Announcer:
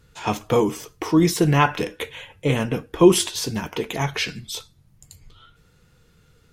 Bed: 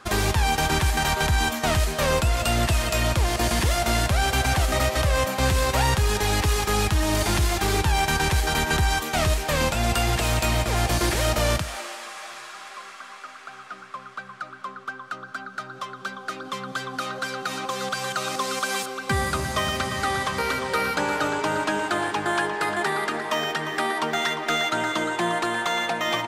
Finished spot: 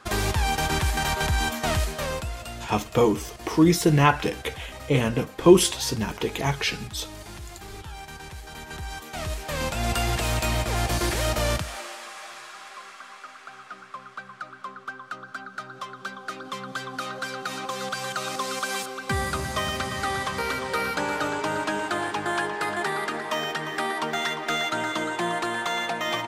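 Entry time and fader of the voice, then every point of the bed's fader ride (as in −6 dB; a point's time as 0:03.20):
2.45 s, −1.0 dB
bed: 0:01.78 −2.5 dB
0:02.73 −18 dB
0:08.44 −18 dB
0:09.92 −2.5 dB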